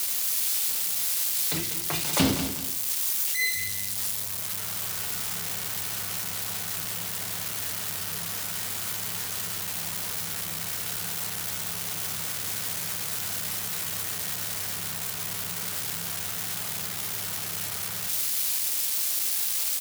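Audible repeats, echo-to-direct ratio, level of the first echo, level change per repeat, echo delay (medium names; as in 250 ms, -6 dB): 2, -9.0 dB, -9.5 dB, -9.5 dB, 194 ms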